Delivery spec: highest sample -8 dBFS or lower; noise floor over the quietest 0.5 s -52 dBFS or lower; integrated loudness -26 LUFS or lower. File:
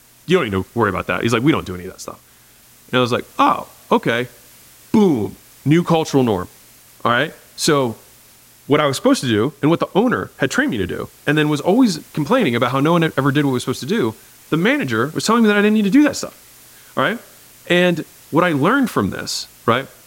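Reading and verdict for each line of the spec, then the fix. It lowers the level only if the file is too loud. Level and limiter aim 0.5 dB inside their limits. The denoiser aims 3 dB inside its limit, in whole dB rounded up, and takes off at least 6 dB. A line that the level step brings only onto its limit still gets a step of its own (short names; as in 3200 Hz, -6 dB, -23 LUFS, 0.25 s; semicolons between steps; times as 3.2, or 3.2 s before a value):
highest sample -4.0 dBFS: fail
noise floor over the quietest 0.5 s -49 dBFS: fail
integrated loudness -17.5 LUFS: fail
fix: gain -9 dB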